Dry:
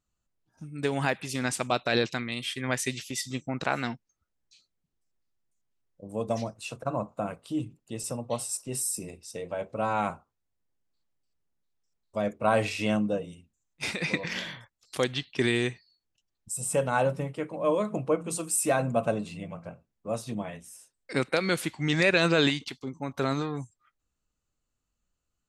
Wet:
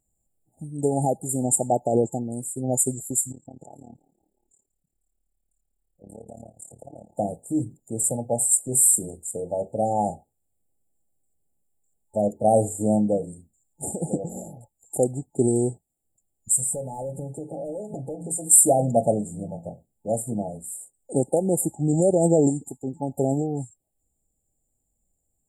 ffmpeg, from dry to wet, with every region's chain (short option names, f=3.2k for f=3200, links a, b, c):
-filter_complex "[0:a]asettb=1/sr,asplit=3[a][b][c];[a]atrim=end=3.324[d];[b]atrim=start=3.32:end=7.15,asetpts=PTS-STARTPTS,afade=t=in:d=0.004:c=qsin,afade=t=out:st=3.826:d=0.004:c=qsin,acompressor=threshold=-43dB:ratio=4:attack=3.2:release=140:knee=1:detection=peak,asplit=5[e][f][g][h][i];[f]adelay=178,afreqshift=39,volume=-23dB[j];[g]adelay=356,afreqshift=78,volume=-28.4dB[k];[h]adelay=534,afreqshift=117,volume=-33.7dB[l];[i]adelay=712,afreqshift=156,volume=-39.1dB[m];[e][j][k][l][m]amix=inputs=5:normalize=0,atrim=end_sample=168903,tremolo=f=36:d=0.919[n];[c]atrim=start=7.146[o];[d][n]acrossfade=d=0.004:c1=hsin:c2=qsin[p];[p][o]acrossfade=d=0.004:c1=qsin:c2=hsin,asettb=1/sr,asplit=3[q][r][s];[q]atrim=end=16.564[t];[r]atrim=start=16.56:end=18.46,asetpts=PTS-STARTPTS,afade=t=in:d=0.004:c=qsin,afade=t=out:st=1.896:d=0.004:c=qsin,aecho=1:1:7.3:0.43,atrim=end_sample=83790,asoftclip=type=hard:threshold=-20dB,acompressor=threshold=-35dB:ratio=8:attack=3.2:release=140:knee=1:detection=peak[u];[s]atrim=start=18.456[v];[t][u]acrossfade=d=0.004:c1=hsin:c2=qsin[w];[w][v]acrossfade=d=0.004:c1=qsin:c2=hsin,equalizer=f=4.2k:w=0.68:g=13.5,afftfilt=real='re*(1-between(b*sr/4096,870,7000))':imag='im*(1-between(b*sr/4096,870,7000))':win_size=4096:overlap=0.75,highshelf=f=7.5k:g=4.5,volume=5.5dB"